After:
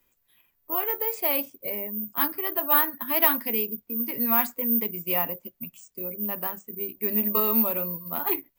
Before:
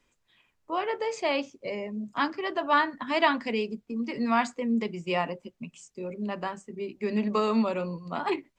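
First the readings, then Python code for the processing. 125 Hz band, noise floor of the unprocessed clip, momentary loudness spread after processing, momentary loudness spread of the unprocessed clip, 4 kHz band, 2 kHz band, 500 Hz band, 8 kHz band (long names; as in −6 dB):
−2.5 dB, −74 dBFS, 11 LU, 12 LU, −2.5 dB, −2.5 dB, −2.5 dB, +6.5 dB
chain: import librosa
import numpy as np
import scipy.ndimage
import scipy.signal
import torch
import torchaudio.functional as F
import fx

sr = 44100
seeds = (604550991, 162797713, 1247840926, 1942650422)

y = fx.notch(x, sr, hz=6400.0, q=21.0)
y = (np.kron(y[::3], np.eye(3)[0]) * 3)[:len(y)]
y = F.gain(torch.from_numpy(y), -2.5).numpy()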